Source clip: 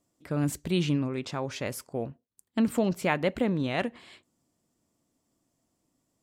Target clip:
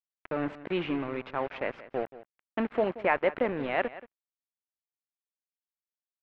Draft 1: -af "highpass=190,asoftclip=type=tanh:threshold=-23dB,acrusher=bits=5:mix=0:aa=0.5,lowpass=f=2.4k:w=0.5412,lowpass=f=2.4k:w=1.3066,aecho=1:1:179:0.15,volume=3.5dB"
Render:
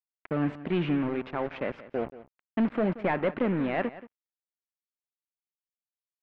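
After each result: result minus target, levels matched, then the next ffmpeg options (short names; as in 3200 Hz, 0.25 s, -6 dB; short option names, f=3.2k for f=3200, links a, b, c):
soft clip: distortion +11 dB; 250 Hz band +4.5 dB
-af "highpass=190,asoftclip=type=tanh:threshold=-12.5dB,acrusher=bits=5:mix=0:aa=0.5,lowpass=f=2.4k:w=0.5412,lowpass=f=2.4k:w=1.3066,aecho=1:1:179:0.15,volume=3.5dB"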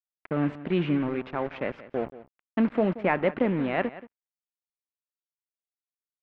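250 Hz band +4.0 dB
-af "highpass=410,asoftclip=type=tanh:threshold=-12.5dB,acrusher=bits=5:mix=0:aa=0.5,lowpass=f=2.4k:w=0.5412,lowpass=f=2.4k:w=1.3066,aecho=1:1:179:0.15,volume=3.5dB"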